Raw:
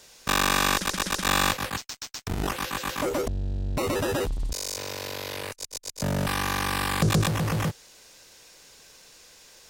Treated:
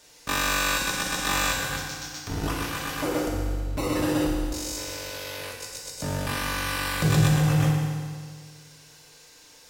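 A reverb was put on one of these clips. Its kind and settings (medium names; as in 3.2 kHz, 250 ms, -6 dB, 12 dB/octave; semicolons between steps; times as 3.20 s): FDN reverb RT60 1.8 s, low-frequency decay 1.05×, high-frequency decay 0.9×, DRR -3 dB; trim -4.5 dB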